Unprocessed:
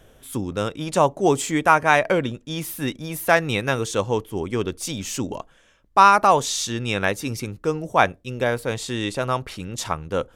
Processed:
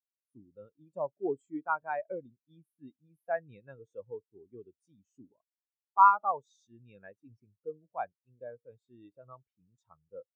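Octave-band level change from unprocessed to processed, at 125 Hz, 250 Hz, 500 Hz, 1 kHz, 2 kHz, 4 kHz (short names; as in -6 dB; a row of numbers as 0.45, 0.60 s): under -25 dB, -20.5 dB, -17.0 dB, -10.0 dB, -20.5 dB, under -40 dB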